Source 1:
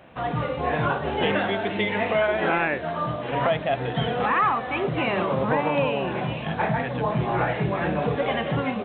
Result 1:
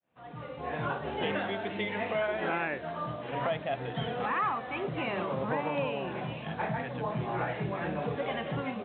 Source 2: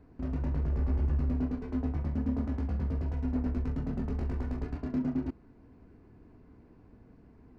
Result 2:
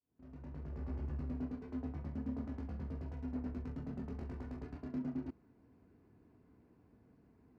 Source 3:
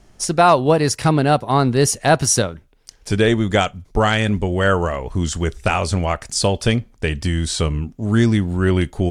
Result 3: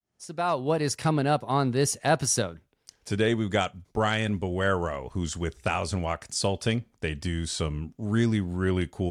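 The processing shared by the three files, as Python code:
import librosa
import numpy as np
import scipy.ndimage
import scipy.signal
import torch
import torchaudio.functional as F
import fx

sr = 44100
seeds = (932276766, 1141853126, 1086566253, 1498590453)

y = fx.fade_in_head(x, sr, length_s=0.91)
y = scipy.signal.sosfilt(scipy.signal.butter(2, 78.0, 'highpass', fs=sr, output='sos'), y)
y = y * librosa.db_to_amplitude(-8.5)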